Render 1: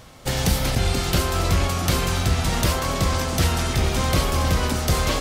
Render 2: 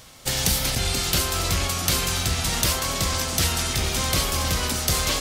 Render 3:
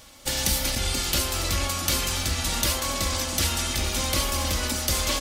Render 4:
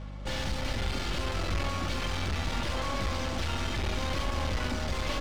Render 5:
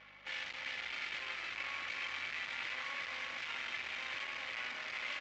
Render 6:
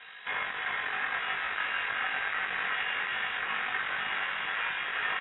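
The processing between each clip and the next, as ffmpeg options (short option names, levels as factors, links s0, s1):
-af "highshelf=f=2200:g=11.5,volume=0.531"
-af "aecho=1:1:3.5:0.53,volume=0.708"
-af "aeval=exprs='(tanh(44.7*val(0)+0.45)-tanh(0.45))/44.7':c=same,aeval=exprs='val(0)+0.00562*(sin(2*PI*50*n/s)+sin(2*PI*2*50*n/s)/2+sin(2*PI*3*50*n/s)/3+sin(2*PI*4*50*n/s)/4+sin(2*PI*5*50*n/s)/5)':c=same,adynamicsmooth=sensitivity=5.5:basefreq=1800,volume=2"
-af "aresample=16000,asoftclip=type=tanh:threshold=0.02,aresample=44100,bandpass=f=2200:t=q:w=2.7:csg=0,aecho=1:1:367:0.473,volume=2"
-filter_complex "[0:a]asplit=2[s0][s1];[s1]adelay=21,volume=0.596[s2];[s0][s2]amix=inputs=2:normalize=0,lowpass=f=3300:t=q:w=0.5098,lowpass=f=3300:t=q:w=0.6013,lowpass=f=3300:t=q:w=0.9,lowpass=f=3300:t=q:w=2.563,afreqshift=-3900,volume=2.66"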